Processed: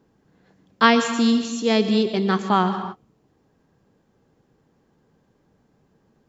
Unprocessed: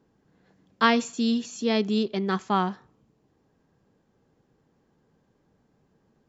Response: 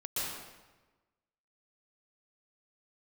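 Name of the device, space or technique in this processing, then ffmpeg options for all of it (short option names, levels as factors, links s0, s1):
keyed gated reverb: -filter_complex "[0:a]asplit=3[s0][s1][s2];[1:a]atrim=start_sample=2205[s3];[s1][s3]afir=irnorm=-1:irlink=0[s4];[s2]apad=whole_len=277160[s5];[s4][s5]sidechaingate=range=0.0224:threshold=0.00224:ratio=16:detection=peak,volume=0.251[s6];[s0][s6]amix=inputs=2:normalize=0,volume=1.58"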